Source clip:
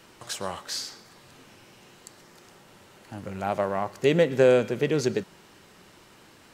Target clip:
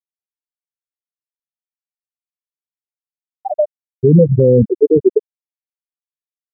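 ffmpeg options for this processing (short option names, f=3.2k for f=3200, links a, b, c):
-filter_complex "[0:a]asettb=1/sr,asplit=3[a][b][c];[a]atrim=end=3.234[d];[b]atrim=start=3.23:end=4.68,asetpts=PTS-STARTPTS,afade=t=in:d=0.004:c=qsin,afade=t=out:st=1.446:d=0.004:c=qsin,asubboost=boost=9:cutoff=200[e];[c]atrim=start=4.676[f];[d][e]acrossfade=d=0.004:c1=hsin:c2=qsin[g];[g][f]acrossfade=d=0.004:c1=qsin:c2=hsin,afftfilt=real='re*gte(hypot(re,im),0.398)':imag='im*gte(hypot(re,im),0.398)':win_size=1024:overlap=0.75,alimiter=level_in=17.5dB:limit=-1dB:release=50:level=0:latency=1,volume=-1dB"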